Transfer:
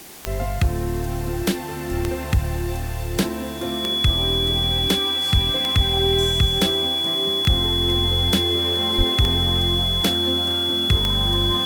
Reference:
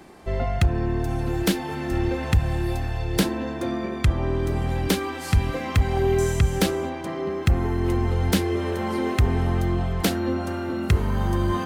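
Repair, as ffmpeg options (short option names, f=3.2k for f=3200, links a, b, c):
-filter_complex "[0:a]adeclick=t=4,bandreject=f=3.4k:w=30,asplit=3[a][b][c];[a]afade=t=out:st=8.97:d=0.02[d];[b]highpass=f=140:w=0.5412,highpass=f=140:w=1.3066,afade=t=in:st=8.97:d=0.02,afade=t=out:st=9.09:d=0.02[e];[c]afade=t=in:st=9.09:d=0.02[f];[d][e][f]amix=inputs=3:normalize=0,afwtdn=0.0089"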